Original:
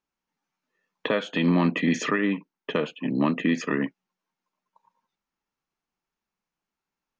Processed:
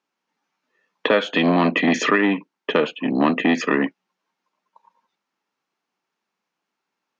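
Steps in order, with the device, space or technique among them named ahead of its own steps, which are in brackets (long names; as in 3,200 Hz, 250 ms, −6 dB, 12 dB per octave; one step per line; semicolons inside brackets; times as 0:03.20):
public-address speaker with an overloaded transformer (saturating transformer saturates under 440 Hz; band-pass filter 240–5,900 Hz)
level +8.5 dB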